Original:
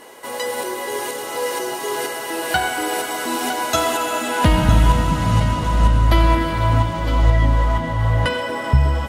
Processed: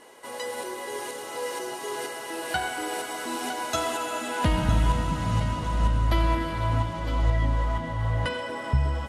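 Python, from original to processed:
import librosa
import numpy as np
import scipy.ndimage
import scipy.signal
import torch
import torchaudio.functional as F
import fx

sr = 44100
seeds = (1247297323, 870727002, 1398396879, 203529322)

y = scipy.signal.sosfilt(scipy.signal.butter(4, 12000.0, 'lowpass', fs=sr, output='sos'), x)
y = F.gain(torch.from_numpy(y), -8.5).numpy()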